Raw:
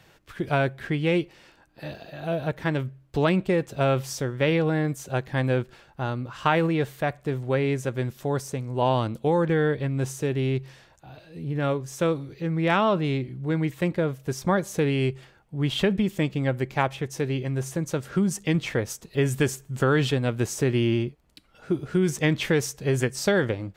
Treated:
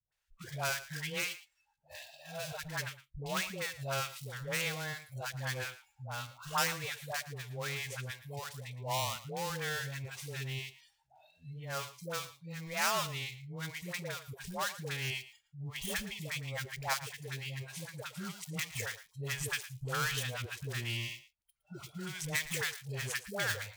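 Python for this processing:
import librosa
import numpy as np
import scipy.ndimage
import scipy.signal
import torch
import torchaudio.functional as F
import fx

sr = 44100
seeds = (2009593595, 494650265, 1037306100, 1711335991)

p1 = fx.dead_time(x, sr, dead_ms=0.11)
p2 = fx.tone_stack(p1, sr, knobs='10-0-10')
p3 = fx.dispersion(p2, sr, late='highs', ms=122.0, hz=550.0)
p4 = fx.noise_reduce_blind(p3, sr, reduce_db=21)
y = p4 + fx.echo_single(p4, sr, ms=113, db=-15.5, dry=0)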